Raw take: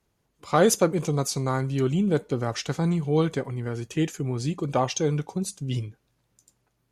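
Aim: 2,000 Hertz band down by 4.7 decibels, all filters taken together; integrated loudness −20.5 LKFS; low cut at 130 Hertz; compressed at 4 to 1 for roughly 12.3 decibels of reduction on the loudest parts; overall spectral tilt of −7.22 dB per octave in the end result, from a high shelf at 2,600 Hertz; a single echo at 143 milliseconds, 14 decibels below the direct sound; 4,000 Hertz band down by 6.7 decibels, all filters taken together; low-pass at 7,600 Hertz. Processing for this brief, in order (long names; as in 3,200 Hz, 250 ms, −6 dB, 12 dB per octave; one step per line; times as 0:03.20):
high-pass filter 130 Hz
low-pass filter 7,600 Hz
parametric band 2,000 Hz −4.5 dB
high-shelf EQ 2,600 Hz −3.5 dB
parametric band 4,000 Hz −4 dB
downward compressor 4 to 1, threshold −29 dBFS
single-tap delay 143 ms −14 dB
level +13.5 dB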